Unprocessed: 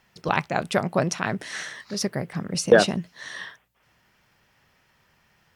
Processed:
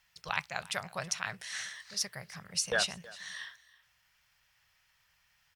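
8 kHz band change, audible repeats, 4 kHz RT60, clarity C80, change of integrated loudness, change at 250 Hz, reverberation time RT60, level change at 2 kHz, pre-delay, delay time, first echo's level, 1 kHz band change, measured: -2.5 dB, 1, no reverb, no reverb, -10.5 dB, -22.5 dB, no reverb, -7.5 dB, no reverb, 323 ms, -20.5 dB, -12.5 dB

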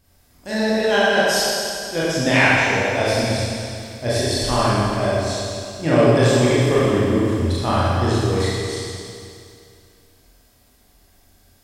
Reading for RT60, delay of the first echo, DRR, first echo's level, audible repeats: 2.5 s, no echo, -9.5 dB, no echo, no echo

